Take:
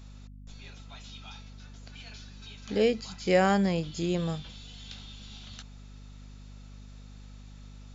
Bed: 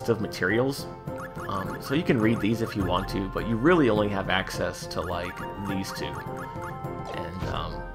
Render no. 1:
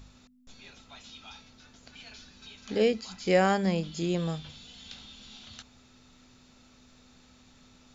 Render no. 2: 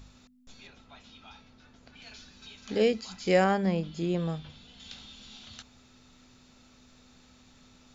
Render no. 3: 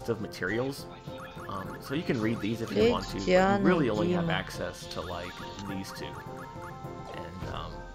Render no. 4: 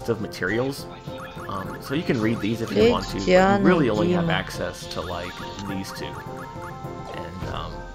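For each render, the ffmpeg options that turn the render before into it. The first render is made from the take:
-af "bandreject=f=50:t=h:w=4,bandreject=f=100:t=h:w=4,bandreject=f=150:t=h:w=4,bandreject=f=200:t=h:w=4"
-filter_complex "[0:a]asettb=1/sr,asplit=3[a][b][c];[a]atrim=end=0.674[d];[b]atrim=start=0.67:end=2.02,asetpts=PTS-STARTPTS,afade=t=in:d=0.004:c=qsin,afade=t=out:st=1.346:d=0.004:c=qsin,aemphasis=mode=reproduction:type=75kf[e];[c]atrim=start=2.016[f];[d][e]acrossfade=d=0.004:c1=hsin:c2=qsin[g];[g][f]acrossfade=d=0.004:c1=qsin:c2=hsin,asettb=1/sr,asplit=3[h][i][j];[h]atrim=end=3.444[k];[i]atrim=start=3.44:end=4.8,asetpts=PTS-STARTPTS,afade=t=in:d=0.004:c=qsin,afade=t=out:st=1.356:d=0.004:c=qsin,lowpass=f=2.3k:p=1[l];[j]atrim=start=4.796[m];[k][l]acrossfade=d=0.004:c1=hsin:c2=qsin[n];[n][m]acrossfade=d=0.004:c1=qsin:c2=hsin"
-filter_complex "[1:a]volume=-6.5dB[a];[0:a][a]amix=inputs=2:normalize=0"
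-af "volume=6.5dB"

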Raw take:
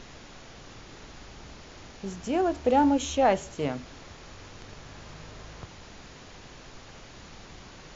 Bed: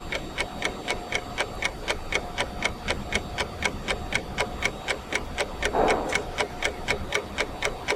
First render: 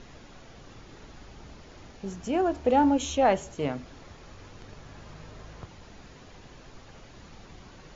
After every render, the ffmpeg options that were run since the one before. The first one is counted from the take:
-af "afftdn=nr=6:nf=-48"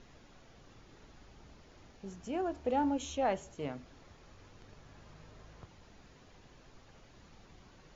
-af "volume=-9.5dB"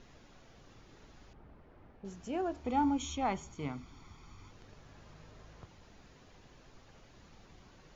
-filter_complex "[0:a]asettb=1/sr,asplit=3[a][b][c];[a]atrim=end=1.334[d];[b]atrim=start=1.33:end=2.05,asetpts=PTS-STARTPTS,afade=t=in:d=0.004:c=qsin,afade=t=out:st=0.716:d=0.004:c=qsin,lowpass=1.6k[e];[c]atrim=start=2.046[f];[d][e]acrossfade=d=0.004:c1=hsin:c2=qsin[g];[g][f]acrossfade=d=0.004:c1=qsin:c2=hsin,asettb=1/sr,asplit=3[h][i][j];[h]atrim=end=2.644[k];[i]atrim=start=2.64:end=4.51,asetpts=PTS-STARTPTS,afade=t=in:d=0.004:c=qsin,afade=t=out:st=1.866:d=0.004:c=qsin,aecho=1:1:0.9:0.68,atrim=end_sample=82467[l];[j]atrim=start=4.506[m];[k][l]acrossfade=d=0.004:c1=hsin:c2=qsin[n];[n][m]acrossfade=d=0.004:c1=qsin:c2=hsin"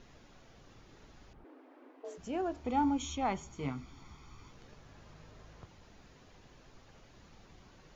-filter_complex "[0:a]asplit=3[a][b][c];[a]afade=t=out:st=1.43:d=0.02[d];[b]afreqshift=250,afade=t=in:st=1.43:d=0.02,afade=t=out:st=2.17:d=0.02[e];[c]afade=t=in:st=2.17:d=0.02[f];[d][e][f]amix=inputs=3:normalize=0,asettb=1/sr,asplit=3[g][h][i];[g]atrim=end=3.524[j];[h]atrim=start=3.52:end=4.75,asetpts=PTS-STARTPTS,afade=t=in:d=0.004:c=qsin,afade=t=out:st=1.226:d=0.004:c=qsin,asplit=2[k][l];[l]adelay=15,volume=-6dB[m];[k][m]amix=inputs=2:normalize=0,atrim=end_sample=54243[n];[i]atrim=start=4.746[o];[j][n]acrossfade=d=0.004:c1=hsin:c2=qsin[p];[p][o]acrossfade=d=0.004:c1=qsin:c2=hsin"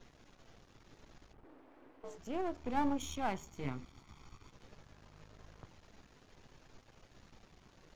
-af "aeval=exprs='if(lt(val(0),0),0.251*val(0),val(0))':c=same"

